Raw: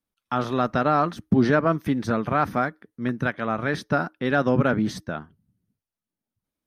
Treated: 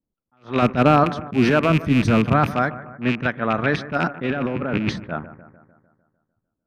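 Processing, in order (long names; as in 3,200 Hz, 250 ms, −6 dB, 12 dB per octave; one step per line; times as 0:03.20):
loose part that buzzes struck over −29 dBFS, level −19 dBFS
0:01.70–0:02.46: low-shelf EQ 180 Hz +12 dB
0:03.97–0:04.96: compressor whose output falls as the input rises −28 dBFS, ratio −1
low-pass that shuts in the quiet parts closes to 520 Hz, open at −17 dBFS
brickwall limiter −13 dBFS, peak gain reduction 5.5 dB
0:00.62–0:01.04: low-shelf EQ 490 Hz +9 dB
bucket-brigade delay 150 ms, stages 2,048, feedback 55%, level −16 dB
level that may rise only so fast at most 250 dB per second
level +5.5 dB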